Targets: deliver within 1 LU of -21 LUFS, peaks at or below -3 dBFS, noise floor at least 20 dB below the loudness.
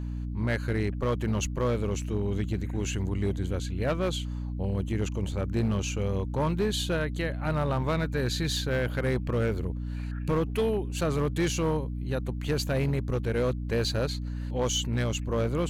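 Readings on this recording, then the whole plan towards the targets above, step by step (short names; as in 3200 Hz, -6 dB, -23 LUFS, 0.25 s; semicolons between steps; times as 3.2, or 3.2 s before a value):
clipped 1.8%; flat tops at -20.5 dBFS; hum 60 Hz; harmonics up to 300 Hz; hum level -31 dBFS; loudness -29.5 LUFS; peak -20.5 dBFS; loudness target -21.0 LUFS
-> clip repair -20.5 dBFS; notches 60/120/180/240/300 Hz; gain +8.5 dB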